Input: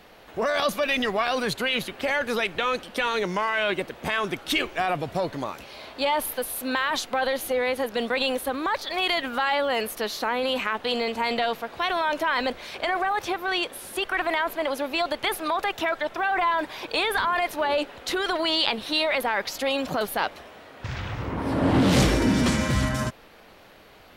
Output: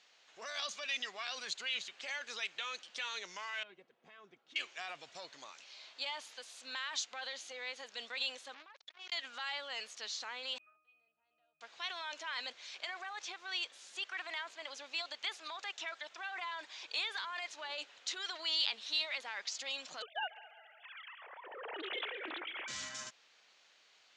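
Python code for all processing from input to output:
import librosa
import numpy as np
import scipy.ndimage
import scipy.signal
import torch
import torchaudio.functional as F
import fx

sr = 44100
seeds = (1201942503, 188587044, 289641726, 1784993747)

y = fx.chain(x, sr, fx.bandpass_q(hz=210.0, q=0.75),
    fx.notch_comb(f0_hz=300.0), at=(3.63, 4.56))
y = fx.chain(y, sr, fx.spacing_loss(db_at_10k=24),
    fx.over_compress(threshold_db=-31.0, ratio=-0.5),
    fx.transformer_sat(knee_hz=1600.0), at=(8.54, 9.12))
y = fx.chain(y, sr, fx.peak_eq(hz=5200.0, db=-7.0, octaves=1.6),
    fx.octave_resonator(note='D#', decay_s=0.68), at=(10.58, 11.61))
y = fx.chain(y, sr, fx.sine_speech(),
    fx.echo_heads(ms=69, heads='second and third', feedback_pct=54, wet_db=-19),
    fx.doppler_dist(depth_ms=0.18), at=(20.02, 22.68))
y = scipy.signal.sosfilt(scipy.signal.ellip(4, 1.0, 60, 7000.0, 'lowpass', fs=sr, output='sos'), y)
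y = np.diff(y, prepend=0.0)
y = y * librosa.db_to_amplitude(-2.5)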